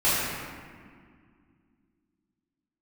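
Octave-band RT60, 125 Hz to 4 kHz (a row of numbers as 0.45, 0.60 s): 2.8, 3.3, 2.1, 1.9, 1.8, 1.2 s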